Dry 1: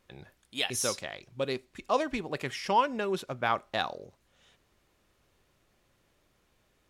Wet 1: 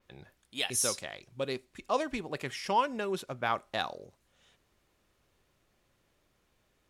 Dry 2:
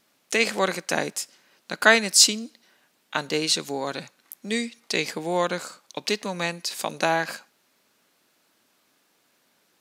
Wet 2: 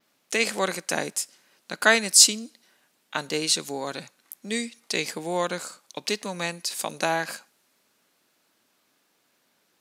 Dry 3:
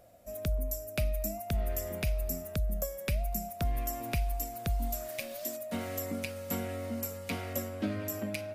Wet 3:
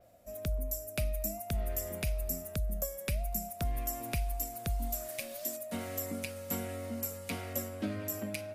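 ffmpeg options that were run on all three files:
ffmpeg -i in.wav -af "adynamicequalizer=threshold=0.00398:dfrequency=9800:dqfactor=0.88:tfrequency=9800:tqfactor=0.88:attack=5:release=100:ratio=0.375:range=3.5:mode=boostabove:tftype=bell,volume=-2.5dB" out.wav

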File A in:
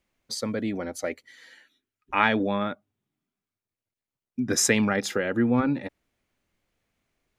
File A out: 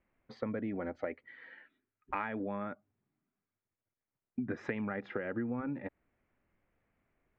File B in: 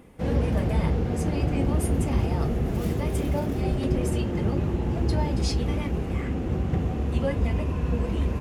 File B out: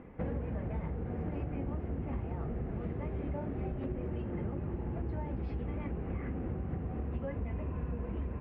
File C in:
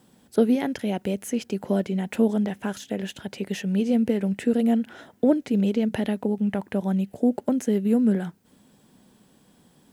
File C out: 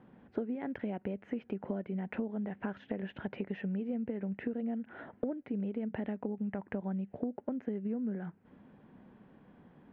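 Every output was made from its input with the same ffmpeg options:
ffmpeg -i in.wav -af "lowpass=frequency=2200:width=0.5412,lowpass=frequency=2200:width=1.3066,acompressor=threshold=-33dB:ratio=10" out.wav

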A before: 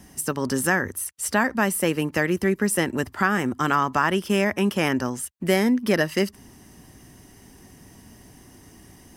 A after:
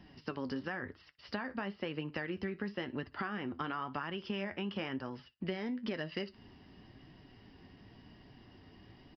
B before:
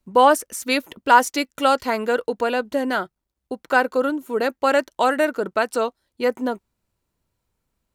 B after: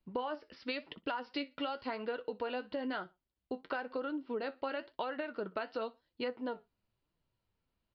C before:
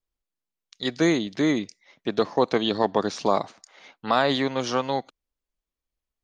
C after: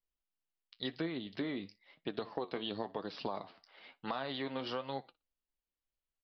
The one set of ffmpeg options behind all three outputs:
ffmpeg -i in.wav -af "equalizer=frequency=2900:width=7.7:gain=5.5,aecho=1:1:60|120:0.0631|0.012,alimiter=limit=-9.5dB:level=0:latency=1:release=201,flanger=delay=5.7:depth=6.3:regen=58:speed=0.98:shape=triangular,acompressor=threshold=-31dB:ratio=6,aresample=11025,aresample=44100,volume=-3.5dB" out.wav

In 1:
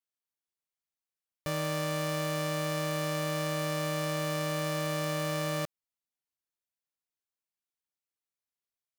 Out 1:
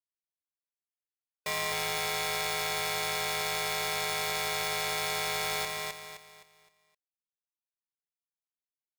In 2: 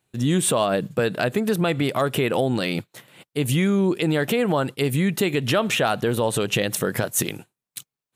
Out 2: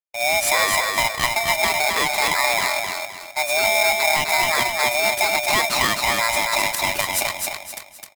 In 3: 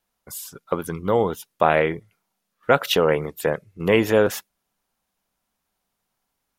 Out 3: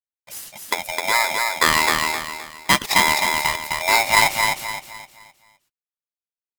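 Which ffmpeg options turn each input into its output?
ffmpeg -i in.wav -filter_complex "[0:a]afftfilt=real='real(if(between(b,1,1008),(2*floor((b-1)/48)+1)*48-b,b),0)':imag='imag(if(between(b,1,1008),(2*floor((b-1)/48)+1)*48-b,b),0)*if(between(b,1,1008),-1,1)':win_size=2048:overlap=0.75,agate=range=-33dB:threshold=-43dB:ratio=3:detection=peak,acrusher=bits=9:mode=log:mix=0:aa=0.000001,asplit=2[link_01][link_02];[link_02]aecho=0:1:259|518|777|1036|1295:0.668|0.234|0.0819|0.0287|0.01[link_03];[link_01][link_03]amix=inputs=2:normalize=0,aeval=exprs='val(0)*sgn(sin(2*PI*1500*n/s))':channel_layout=same" out.wav

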